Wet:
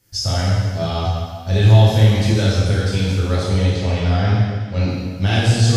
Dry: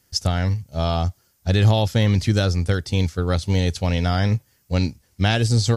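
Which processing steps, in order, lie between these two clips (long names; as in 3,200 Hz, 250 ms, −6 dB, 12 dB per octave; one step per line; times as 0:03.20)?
in parallel at −1 dB: brickwall limiter −17 dBFS, peak gain reduction 9.5 dB
0:03.43–0:04.88: on the sum: high-frequency loss of the air 100 metres
dense smooth reverb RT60 1.7 s, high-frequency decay 0.95×, DRR −8 dB
level −9 dB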